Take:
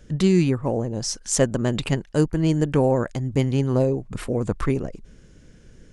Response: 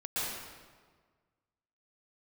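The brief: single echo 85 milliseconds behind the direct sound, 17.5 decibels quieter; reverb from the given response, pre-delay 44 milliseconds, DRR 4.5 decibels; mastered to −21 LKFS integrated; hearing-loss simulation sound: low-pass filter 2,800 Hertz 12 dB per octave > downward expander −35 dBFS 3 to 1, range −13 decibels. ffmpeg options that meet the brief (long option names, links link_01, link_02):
-filter_complex "[0:a]aecho=1:1:85:0.133,asplit=2[link_01][link_02];[1:a]atrim=start_sample=2205,adelay=44[link_03];[link_02][link_03]afir=irnorm=-1:irlink=0,volume=-10.5dB[link_04];[link_01][link_04]amix=inputs=2:normalize=0,lowpass=2800,agate=range=-13dB:threshold=-35dB:ratio=3,volume=1dB"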